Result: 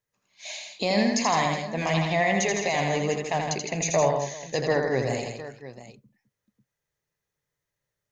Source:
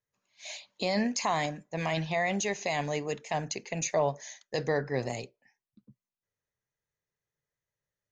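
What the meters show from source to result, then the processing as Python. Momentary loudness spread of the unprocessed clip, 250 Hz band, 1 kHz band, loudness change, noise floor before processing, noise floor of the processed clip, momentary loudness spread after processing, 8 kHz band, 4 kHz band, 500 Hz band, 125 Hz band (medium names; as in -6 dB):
14 LU, +6.0 dB, +6.5 dB, +6.0 dB, under -85 dBFS, -85 dBFS, 15 LU, +6.0 dB, +6.0 dB, +6.0 dB, +6.5 dB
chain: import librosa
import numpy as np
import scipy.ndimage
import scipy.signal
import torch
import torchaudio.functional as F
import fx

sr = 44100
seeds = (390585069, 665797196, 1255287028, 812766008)

y = fx.echo_multitap(x, sr, ms=(82, 161, 210, 371, 706), db=(-4.5, -7.0, -18.0, -19.5, -14.5))
y = F.gain(torch.from_numpy(y), 4.0).numpy()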